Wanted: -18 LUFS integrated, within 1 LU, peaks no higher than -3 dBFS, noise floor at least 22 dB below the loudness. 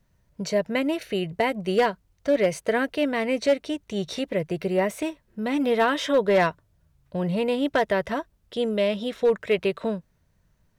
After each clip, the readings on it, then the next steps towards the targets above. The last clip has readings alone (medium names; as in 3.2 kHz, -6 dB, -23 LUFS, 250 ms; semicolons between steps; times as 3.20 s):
clipped samples 0.4%; clipping level -13.5 dBFS; loudness -25.0 LUFS; peak level -13.5 dBFS; loudness target -18.0 LUFS
-> clip repair -13.5 dBFS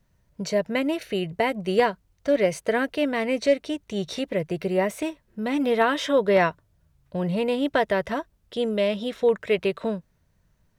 clipped samples 0.0%; loudness -25.0 LUFS; peak level -8.0 dBFS; loudness target -18.0 LUFS
-> trim +7 dB; peak limiter -3 dBFS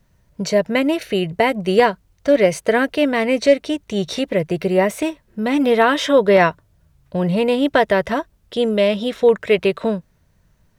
loudness -18.0 LUFS; peak level -3.0 dBFS; noise floor -60 dBFS